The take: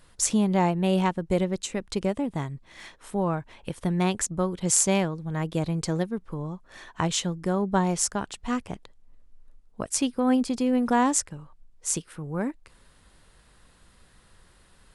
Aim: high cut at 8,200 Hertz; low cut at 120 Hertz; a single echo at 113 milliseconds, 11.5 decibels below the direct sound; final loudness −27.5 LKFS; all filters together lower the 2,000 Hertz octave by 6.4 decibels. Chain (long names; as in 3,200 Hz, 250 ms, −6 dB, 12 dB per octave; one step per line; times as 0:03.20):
high-pass filter 120 Hz
low-pass filter 8,200 Hz
parametric band 2,000 Hz −8.5 dB
single-tap delay 113 ms −11.5 dB